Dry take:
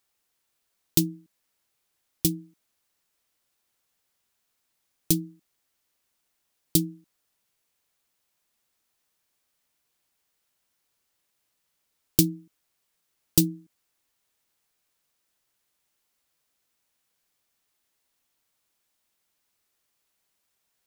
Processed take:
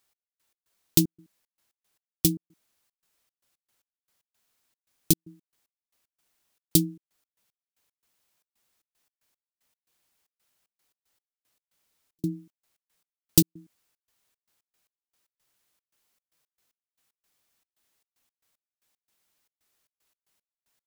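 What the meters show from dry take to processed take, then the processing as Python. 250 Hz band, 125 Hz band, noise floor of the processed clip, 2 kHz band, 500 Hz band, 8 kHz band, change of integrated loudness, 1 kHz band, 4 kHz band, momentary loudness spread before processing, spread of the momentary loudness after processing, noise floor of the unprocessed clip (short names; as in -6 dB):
0.0 dB, 0.0 dB, under -85 dBFS, +0.5 dB, 0.0 dB, +0.5 dB, 0.0 dB, n/a, +0.5 dB, 14 LU, 13 LU, -77 dBFS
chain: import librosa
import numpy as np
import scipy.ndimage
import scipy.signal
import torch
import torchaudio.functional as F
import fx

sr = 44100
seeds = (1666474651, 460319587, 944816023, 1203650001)

y = fx.step_gate(x, sr, bpm=114, pattern='x..x.xxx.xx.x.', floor_db=-60.0, edge_ms=4.5)
y = y * librosa.db_to_amplitude(1.5)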